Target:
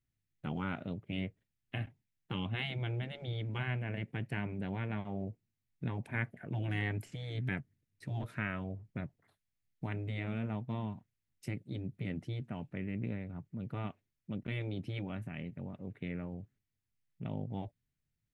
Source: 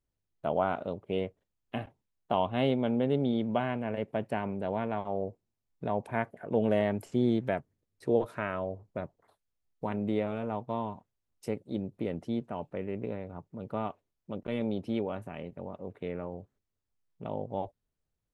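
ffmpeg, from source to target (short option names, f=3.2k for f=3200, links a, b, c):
-af "afftfilt=real='re*lt(hypot(re,im),0.158)':imag='im*lt(hypot(re,im),0.158)':win_size=1024:overlap=0.75,equalizer=f=125:t=o:w=1:g=9,equalizer=f=250:t=o:w=1:g=3,equalizer=f=500:t=o:w=1:g=-7,equalizer=f=1k:t=o:w=1:g=-8,equalizer=f=2k:t=o:w=1:g=8,volume=-3.5dB"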